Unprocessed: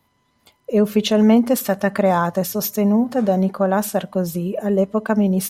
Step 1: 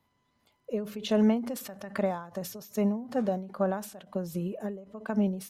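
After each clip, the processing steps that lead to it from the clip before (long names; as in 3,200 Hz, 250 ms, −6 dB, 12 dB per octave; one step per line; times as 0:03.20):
high-shelf EQ 8,600 Hz −6.5 dB
every ending faded ahead of time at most 100 dB per second
level −8.5 dB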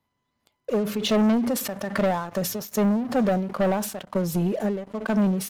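leveller curve on the samples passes 3
in parallel at −3 dB: brickwall limiter −26.5 dBFS, peak gain reduction 12 dB
on the sum: level −2.5 dB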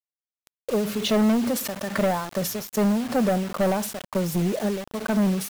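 bit reduction 6 bits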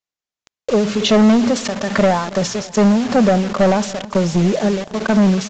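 repeating echo 279 ms, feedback 57%, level −20 dB
downsampling to 16,000 Hz
level +8.5 dB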